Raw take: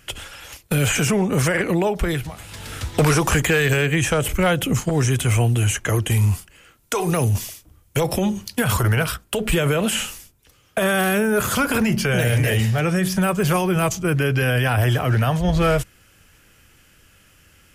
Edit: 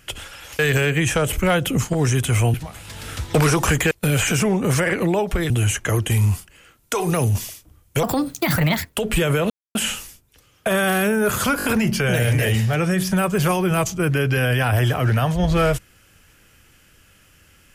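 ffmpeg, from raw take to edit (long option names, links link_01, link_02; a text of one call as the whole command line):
ffmpeg -i in.wav -filter_complex "[0:a]asplit=11[link_01][link_02][link_03][link_04][link_05][link_06][link_07][link_08][link_09][link_10][link_11];[link_01]atrim=end=0.592[link_12];[link_02]atrim=start=3.548:end=5.502[link_13];[link_03]atrim=start=2.178:end=3.552[link_14];[link_04]atrim=start=0.588:end=2.182[link_15];[link_05]atrim=start=5.498:end=8.034[link_16];[link_06]atrim=start=8.03:end=9.29,asetpts=PTS-STARTPTS,asetrate=61740,aresample=44100[link_17];[link_07]atrim=start=9.286:end=9.86,asetpts=PTS-STARTPTS,afade=type=out:start_time=0.57:duration=0.004:curve=hsin,apad=pad_dur=0.25[link_18];[link_08]atrim=start=9.86:end=11.712,asetpts=PTS-STARTPTS,afade=type=in:duration=0.004:curve=hsin[link_19];[link_09]atrim=start=11.688:end=11.712[link_20];[link_10]atrim=start=11.688:end=11.712[link_21];[link_11]atrim=start=11.688[link_22];[link_12][link_13]acrossfade=duration=0.004:curve1=hsin:curve2=hsin[link_23];[link_23][link_14]acrossfade=duration=0.004:curve1=hsin:curve2=hsin[link_24];[link_24][link_15]acrossfade=duration=0.004:curve1=hsin:curve2=hsin[link_25];[link_25][link_16]acrossfade=duration=0.004:curve1=hsin:curve2=hsin[link_26];[link_26][link_17]acrossfade=duration=0.004:curve1=hsin:curve2=hsin[link_27];[link_18][link_19]concat=n=2:v=0:a=1[link_28];[link_27][link_28]acrossfade=duration=0.004:curve1=hsin:curve2=hsin[link_29];[link_29][link_20]acrossfade=duration=0.004:curve1=hsin:curve2=hsin[link_30];[link_30][link_21]acrossfade=duration=0.004:curve1=hsin:curve2=hsin[link_31];[link_31][link_22]acrossfade=duration=0.004:curve1=hsin:curve2=hsin" out.wav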